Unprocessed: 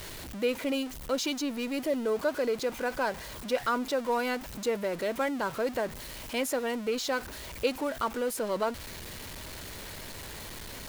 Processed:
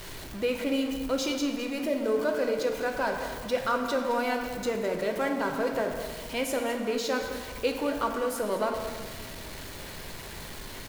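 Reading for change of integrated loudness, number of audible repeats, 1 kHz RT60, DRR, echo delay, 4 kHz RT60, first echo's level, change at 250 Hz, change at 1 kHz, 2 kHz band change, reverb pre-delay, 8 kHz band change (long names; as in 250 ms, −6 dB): +2.0 dB, 1, 1.6 s, 2.5 dB, 211 ms, 1.1 s, −13.0 dB, +2.5 dB, +2.0 dB, +1.5 dB, 3 ms, −0.5 dB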